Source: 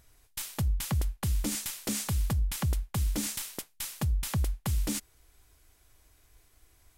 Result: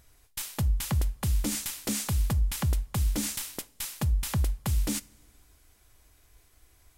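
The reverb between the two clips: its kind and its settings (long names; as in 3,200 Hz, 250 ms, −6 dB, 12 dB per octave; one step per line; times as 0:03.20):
coupled-rooms reverb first 0.32 s, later 2.3 s, from −18 dB, DRR 16.5 dB
level +1.5 dB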